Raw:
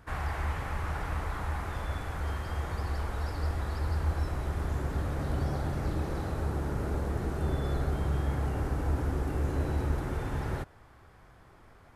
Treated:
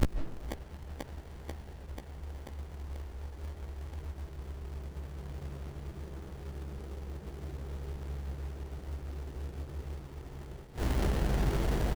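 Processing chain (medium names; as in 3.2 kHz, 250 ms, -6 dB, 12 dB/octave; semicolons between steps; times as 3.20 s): tape start-up on the opening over 0.59 s; rippled EQ curve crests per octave 0.76, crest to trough 8 dB; in parallel at -1 dB: compression 6:1, threshold -36 dBFS, peak gain reduction 13.5 dB; on the sum: companded quantiser 4-bit; hum 50 Hz, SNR 26 dB; inverted gate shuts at -29 dBFS, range -34 dB; doubling 15 ms -7 dB; feedback echo behind a high-pass 488 ms, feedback 77%, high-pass 4.3 kHz, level -3 dB; on a send at -5 dB: reverberation RT60 0.50 s, pre-delay 115 ms; on the sum: sliding maximum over 33 samples; trim +16.5 dB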